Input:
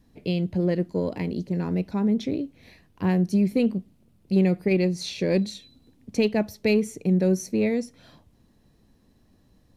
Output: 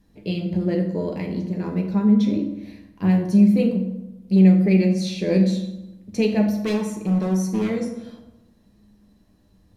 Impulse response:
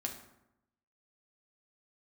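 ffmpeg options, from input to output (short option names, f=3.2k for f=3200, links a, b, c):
-filter_complex "[0:a]asettb=1/sr,asplit=3[a][b][c];[a]atrim=end=6.544[d];[b]atrim=start=6.54:end=7.7,asetpts=PTS-STARTPTS,afade=t=in:d=0.004:c=qsin,afade=t=out:st=1.156:d=0.004:c=qsin,volume=21.5dB,asoftclip=hard,volume=-21.5dB[e];[c]atrim=start=7.696[f];[d][e]acrossfade=d=0.004:c1=hsin:c2=qsin[g];[g][f]acrossfade=d=0.004:c1=qsin:c2=hsin[h];[1:a]atrim=start_sample=2205,asetrate=37485,aresample=44100[i];[h][i]afir=irnorm=-1:irlink=0"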